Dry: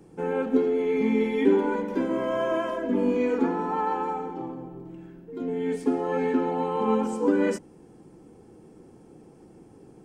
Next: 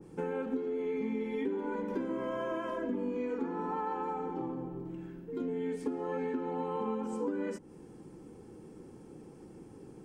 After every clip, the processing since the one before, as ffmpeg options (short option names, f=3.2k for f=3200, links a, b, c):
-af "equalizer=f=690:w=4.7:g=-6.5,acompressor=threshold=-32dB:ratio=6,adynamicequalizer=threshold=0.00224:dfrequency=1900:dqfactor=0.7:tfrequency=1900:tqfactor=0.7:attack=5:release=100:ratio=0.375:range=2:mode=cutabove:tftype=highshelf"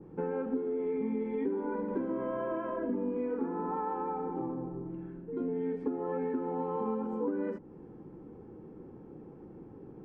-af "lowpass=1.4k,areverse,acompressor=mode=upward:threshold=-48dB:ratio=2.5,areverse,volume=1.5dB"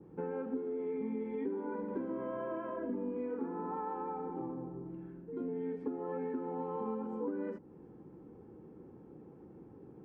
-af "highpass=43,volume=-4.5dB"